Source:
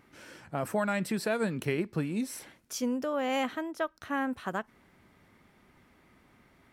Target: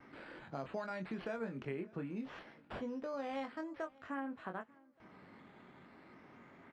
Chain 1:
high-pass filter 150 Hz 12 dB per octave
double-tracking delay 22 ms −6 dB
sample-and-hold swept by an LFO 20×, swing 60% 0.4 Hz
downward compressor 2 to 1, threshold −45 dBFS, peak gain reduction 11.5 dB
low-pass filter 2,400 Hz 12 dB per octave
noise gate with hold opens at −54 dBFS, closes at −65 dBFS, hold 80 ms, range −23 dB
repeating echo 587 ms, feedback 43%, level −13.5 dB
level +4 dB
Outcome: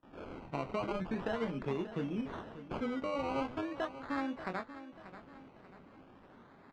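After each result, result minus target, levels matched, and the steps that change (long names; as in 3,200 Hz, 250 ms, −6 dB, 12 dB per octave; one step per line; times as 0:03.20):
echo-to-direct +11 dB; sample-and-hold swept by an LFO: distortion +10 dB; downward compressor: peak gain reduction −5.5 dB
change: repeating echo 587 ms, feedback 43%, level −24.5 dB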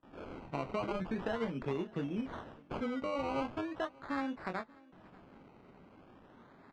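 sample-and-hold swept by an LFO: distortion +10 dB; downward compressor: peak gain reduction −5.5 dB
change: sample-and-hold swept by an LFO 6×, swing 60% 0.4 Hz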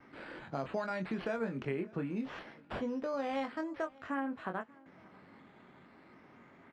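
downward compressor: peak gain reduction −5 dB
change: downward compressor 2 to 1, threshold −55.5 dBFS, peak gain reduction 17 dB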